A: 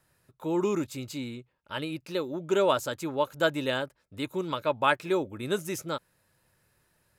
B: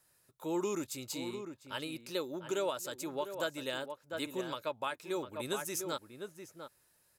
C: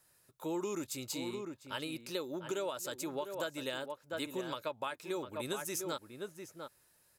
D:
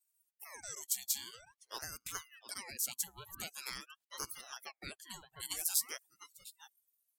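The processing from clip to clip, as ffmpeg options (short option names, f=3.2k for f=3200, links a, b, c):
-filter_complex "[0:a]asplit=2[a][b];[b]adelay=699.7,volume=-9dB,highshelf=f=4k:g=-15.7[c];[a][c]amix=inputs=2:normalize=0,alimiter=limit=-19.5dB:level=0:latency=1:release=490,bass=f=250:g=-6,treble=f=4k:g=9,volume=-5dB"
-af "acompressor=threshold=-36dB:ratio=3,volume=1.5dB"
-af "aderivative,afftdn=nr=24:nf=-57,aeval=exprs='val(0)*sin(2*PI*1500*n/s+1500*0.7/0.47*sin(2*PI*0.47*n/s))':c=same,volume=10dB"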